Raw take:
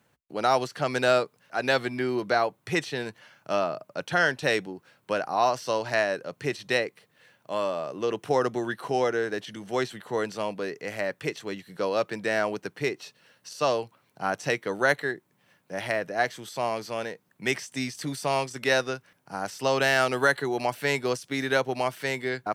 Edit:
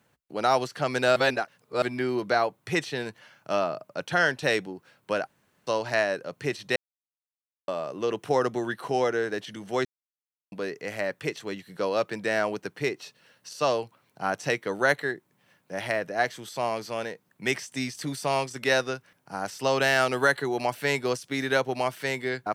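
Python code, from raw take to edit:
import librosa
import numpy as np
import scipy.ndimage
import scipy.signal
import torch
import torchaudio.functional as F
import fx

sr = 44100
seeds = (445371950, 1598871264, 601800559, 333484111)

y = fx.edit(x, sr, fx.reverse_span(start_s=1.16, length_s=0.66),
    fx.room_tone_fill(start_s=5.27, length_s=0.4),
    fx.silence(start_s=6.76, length_s=0.92),
    fx.silence(start_s=9.85, length_s=0.67), tone=tone)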